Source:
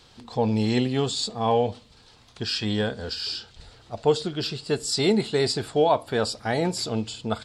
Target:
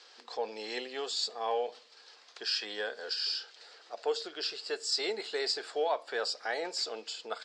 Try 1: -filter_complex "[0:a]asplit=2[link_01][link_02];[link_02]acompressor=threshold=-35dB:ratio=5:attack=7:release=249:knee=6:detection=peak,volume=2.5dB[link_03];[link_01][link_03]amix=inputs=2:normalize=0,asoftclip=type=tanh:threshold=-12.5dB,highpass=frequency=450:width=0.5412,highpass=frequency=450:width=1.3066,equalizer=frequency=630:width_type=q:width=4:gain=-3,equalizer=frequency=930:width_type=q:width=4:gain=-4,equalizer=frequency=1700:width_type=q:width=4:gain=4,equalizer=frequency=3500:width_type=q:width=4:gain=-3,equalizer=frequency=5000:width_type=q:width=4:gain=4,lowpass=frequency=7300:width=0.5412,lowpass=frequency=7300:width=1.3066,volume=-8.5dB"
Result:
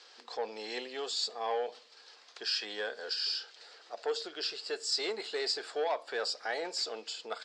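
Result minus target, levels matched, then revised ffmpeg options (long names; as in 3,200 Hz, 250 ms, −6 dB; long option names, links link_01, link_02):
soft clipping: distortion +19 dB
-filter_complex "[0:a]asplit=2[link_01][link_02];[link_02]acompressor=threshold=-35dB:ratio=5:attack=7:release=249:knee=6:detection=peak,volume=2.5dB[link_03];[link_01][link_03]amix=inputs=2:normalize=0,asoftclip=type=tanh:threshold=-1.5dB,highpass=frequency=450:width=0.5412,highpass=frequency=450:width=1.3066,equalizer=frequency=630:width_type=q:width=4:gain=-3,equalizer=frequency=930:width_type=q:width=4:gain=-4,equalizer=frequency=1700:width_type=q:width=4:gain=4,equalizer=frequency=3500:width_type=q:width=4:gain=-3,equalizer=frequency=5000:width_type=q:width=4:gain=4,lowpass=frequency=7300:width=0.5412,lowpass=frequency=7300:width=1.3066,volume=-8.5dB"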